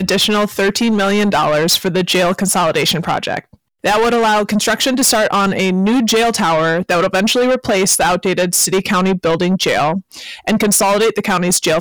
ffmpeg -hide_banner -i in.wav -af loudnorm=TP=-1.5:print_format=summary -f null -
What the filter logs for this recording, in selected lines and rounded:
Input Integrated:    -14.1 LUFS
Input True Peak:      -4.0 dBTP
Input LRA:             1.3 LU
Input Threshold:     -24.2 LUFS